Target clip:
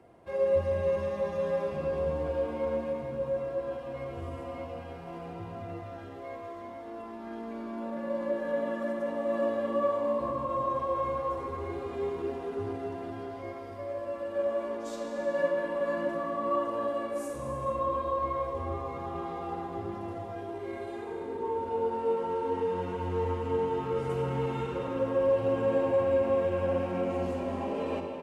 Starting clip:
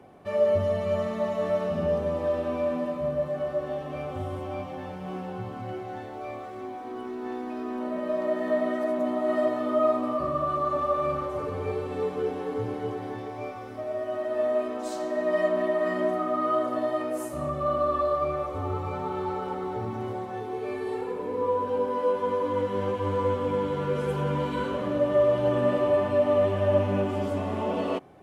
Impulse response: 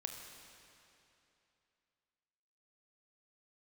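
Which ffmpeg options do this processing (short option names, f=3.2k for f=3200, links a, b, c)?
-filter_complex "[0:a]equalizer=f=220:t=o:w=0.62:g=-5,asetrate=40440,aresample=44100,atempo=1.09051[a];[1:a]atrim=start_sample=2205,afade=t=out:st=0.35:d=0.01,atrim=end_sample=15876,asetrate=26901,aresample=44100[b];[a][b]afir=irnorm=-1:irlink=0,volume=-4.5dB"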